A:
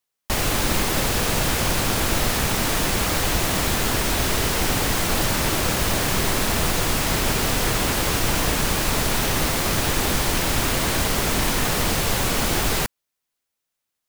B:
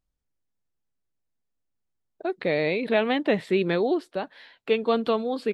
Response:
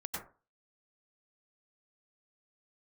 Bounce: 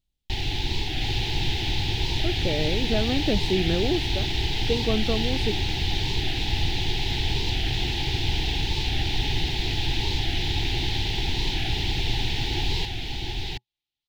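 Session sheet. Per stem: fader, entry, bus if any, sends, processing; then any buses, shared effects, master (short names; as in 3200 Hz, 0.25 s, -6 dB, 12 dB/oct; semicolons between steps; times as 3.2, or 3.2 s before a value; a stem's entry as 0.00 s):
-1.5 dB, 0.00 s, no send, echo send -3.5 dB, EQ curve 120 Hz 0 dB, 210 Hz -12 dB, 370 Hz 0 dB, 580 Hz -18 dB, 840 Hz +9 dB, 1200 Hz -20 dB, 1900 Hz +4 dB, 3700 Hz +5 dB, 8900 Hz -27 dB
+2.0 dB, 0.00 s, no send, no echo send, dry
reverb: off
echo: echo 0.714 s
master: graphic EQ 500/1000/2000 Hz -4/-12/-9 dB; record warp 45 rpm, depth 100 cents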